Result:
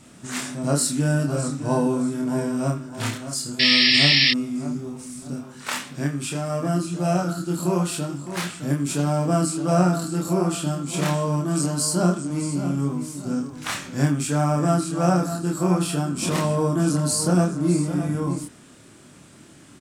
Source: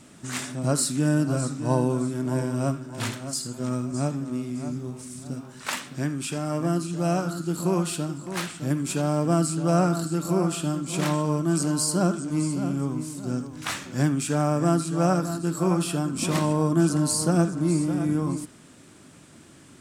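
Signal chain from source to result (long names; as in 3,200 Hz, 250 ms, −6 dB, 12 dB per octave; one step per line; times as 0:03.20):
sound drawn into the spectrogram noise, 0:03.59–0:04.31, 1,700–5,600 Hz −19 dBFS
double-tracking delay 28 ms −2 dB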